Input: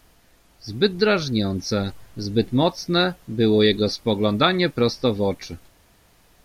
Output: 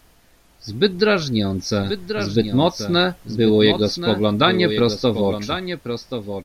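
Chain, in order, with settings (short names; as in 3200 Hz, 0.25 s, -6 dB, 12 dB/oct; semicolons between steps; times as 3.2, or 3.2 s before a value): echo 1.081 s -8.5 dB; gain +2 dB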